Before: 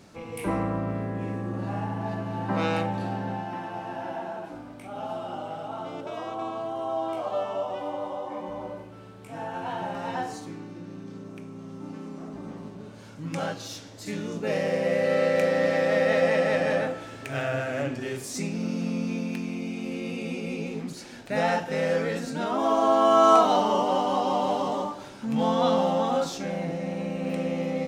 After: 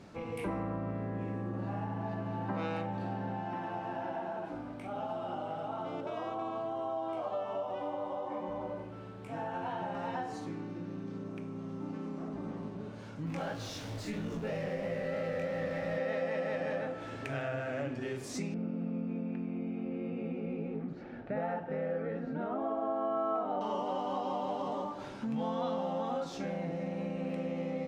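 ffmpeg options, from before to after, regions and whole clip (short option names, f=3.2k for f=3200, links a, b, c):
-filter_complex "[0:a]asettb=1/sr,asplit=3[a][b][c];[a]atrim=end=13.264[d];[b]atrim=start=13.26:end=15.98,asetpts=PTS-STARTPTS,afade=t=in:d=0.004:c=qsin,afade=t=out:st=2.716:d=0.004:c=qsin,aeval=exprs='val(0)+0.5*0.0168*sgn(val(0))':c=same,asubboost=boost=6.5:cutoff=140,flanger=delay=17.5:depth=6:speed=3[e];[c]atrim=start=15.976[f];[d][e]acrossfade=d=0.004:c1=hsin:c2=qsin[g];[g][f]acrossfade=d=0.004:c1=qsin:c2=hsin,asettb=1/sr,asplit=3[h][i][j];[h]atrim=end=18.544[k];[i]atrim=start=18.54:end=23.61,asetpts=PTS-STARTPTS,afade=t=in:d=0.004:c=qsin,afade=t=out:st=5.066:d=0.004:c=qsin,lowpass=1.5k,bandreject=f=1k:w=6.4[l];[j]atrim=start=23.606[m];[k][l]acrossfade=d=0.004:c1=hsin:c2=qsin[n];[n][m]acrossfade=d=0.004:c1=qsin:c2=hsin,lowpass=f=2.6k:p=1,acompressor=threshold=-35dB:ratio=3"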